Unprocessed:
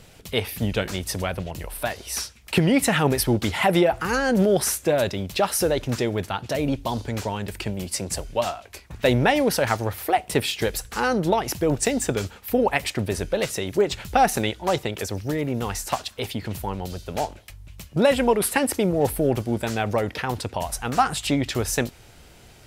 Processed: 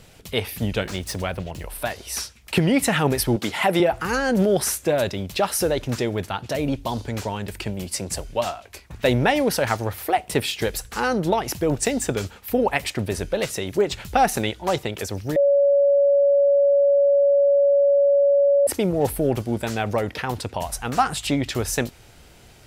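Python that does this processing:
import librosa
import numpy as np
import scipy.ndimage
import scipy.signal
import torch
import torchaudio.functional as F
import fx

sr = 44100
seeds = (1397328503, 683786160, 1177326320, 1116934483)

y = fx.median_filter(x, sr, points=3, at=(0.83, 1.66))
y = fx.highpass(y, sr, hz=180.0, slope=12, at=(3.36, 3.8))
y = fx.edit(y, sr, fx.bleep(start_s=15.36, length_s=3.31, hz=564.0, db=-13.5), tone=tone)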